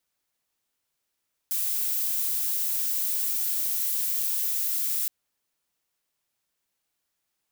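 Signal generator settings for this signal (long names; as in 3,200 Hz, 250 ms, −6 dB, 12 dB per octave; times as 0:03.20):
noise violet, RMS −27 dBFS 3.57 s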